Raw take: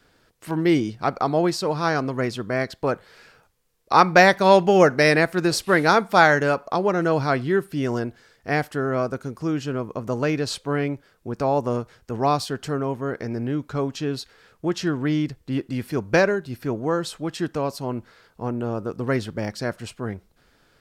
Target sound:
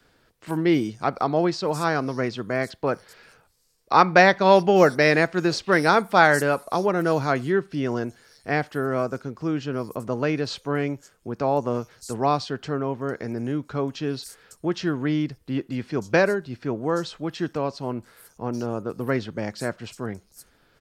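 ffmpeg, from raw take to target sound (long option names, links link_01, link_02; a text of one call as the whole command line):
ffmpeg -i in.wav -filter_complex "[0:a]acrossover=split=100|6500[link_01][link_02][link_03];[link_01]acompressor=threshold=-51dB:ratio=6[link_04];[link_03]atempo=0.87[link_05];[link_04][link_02][link_05]amix=inputs=3:normalize=0,volume=-1dB" out.wav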